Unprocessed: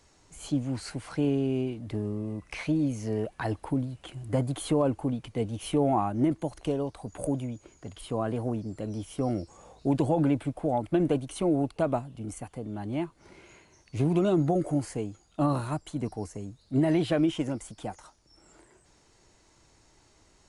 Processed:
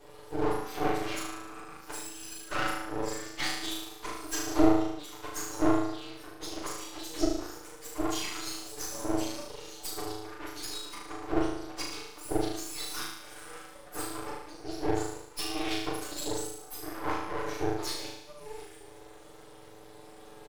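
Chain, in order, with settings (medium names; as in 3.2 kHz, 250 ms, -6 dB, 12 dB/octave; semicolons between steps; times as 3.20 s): spectrum inverted on a logarithmic axis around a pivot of 1.8 kHz; low-pass that closes with the level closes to 790 Hz, closed at -28.5 dBFS; comb 6.8 ms, depth 100%; flutter echo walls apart 6.4 m, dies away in 0.87 s; half-wave rectifier; trim +9 dB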